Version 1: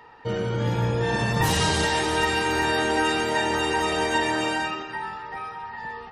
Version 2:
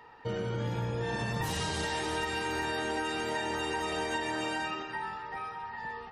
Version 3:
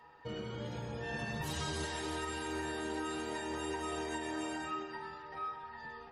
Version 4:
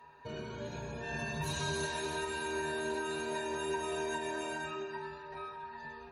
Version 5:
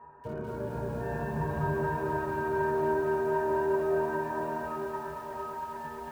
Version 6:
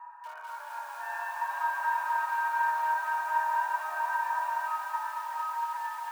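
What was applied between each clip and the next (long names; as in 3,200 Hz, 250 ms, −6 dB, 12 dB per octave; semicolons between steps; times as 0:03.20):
downward compressor, threshold −25 dBFS, peak gain reduction 7.5 dB; level −4.5 dB
stiff-string resonator 72 Hz, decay 0.21 s, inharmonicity 0.008; level +1.5 dB
EQ curve with evenly spaced ripples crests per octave 1.5, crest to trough 12 dB
low-pass filter 1,400 Hz 24 dB per octave; feedback echo at a low word length 226 ms, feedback 80%, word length 10 bits, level −6 dB; level +5.5 dB
Butterworth high-pass 810 Hz 48 dB per octave; level +6 dB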